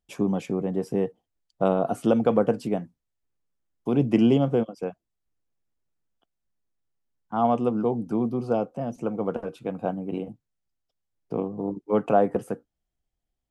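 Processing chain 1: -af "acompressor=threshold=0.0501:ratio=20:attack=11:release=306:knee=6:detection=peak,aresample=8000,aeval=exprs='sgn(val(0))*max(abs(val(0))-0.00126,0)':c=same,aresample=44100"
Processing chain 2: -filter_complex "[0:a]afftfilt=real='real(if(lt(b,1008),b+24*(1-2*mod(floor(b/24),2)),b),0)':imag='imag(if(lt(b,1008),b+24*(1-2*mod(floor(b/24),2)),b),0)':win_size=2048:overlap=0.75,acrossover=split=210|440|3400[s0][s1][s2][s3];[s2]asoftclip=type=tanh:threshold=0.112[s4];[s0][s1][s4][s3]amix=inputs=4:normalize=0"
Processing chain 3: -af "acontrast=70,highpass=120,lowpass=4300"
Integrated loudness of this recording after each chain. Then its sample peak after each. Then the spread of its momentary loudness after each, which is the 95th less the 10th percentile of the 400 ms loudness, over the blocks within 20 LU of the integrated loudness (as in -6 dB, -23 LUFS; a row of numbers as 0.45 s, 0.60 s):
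-34.0 LUFS, -27.5 LUFS, -20.0 LUFS; -16.0 dBFS, -10.0 dBFS, -2.5 dBFS; 7 LU, 11 LU, 12 LU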